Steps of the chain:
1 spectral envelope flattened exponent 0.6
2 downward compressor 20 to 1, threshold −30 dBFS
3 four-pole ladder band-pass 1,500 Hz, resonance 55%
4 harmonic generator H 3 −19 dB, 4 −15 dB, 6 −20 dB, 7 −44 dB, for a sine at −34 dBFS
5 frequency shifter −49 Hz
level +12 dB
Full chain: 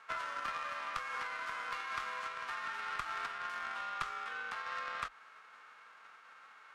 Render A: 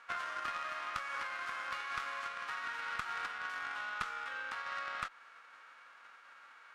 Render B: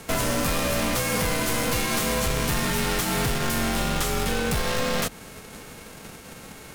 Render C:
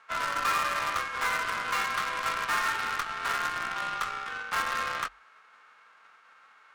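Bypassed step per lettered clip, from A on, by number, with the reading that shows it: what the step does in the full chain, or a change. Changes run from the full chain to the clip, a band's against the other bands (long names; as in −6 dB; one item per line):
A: 5, 500 Hz band −1.5 dB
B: 3, 1 kHz band −19.0 dB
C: 2, average gain reduction 5.5 dB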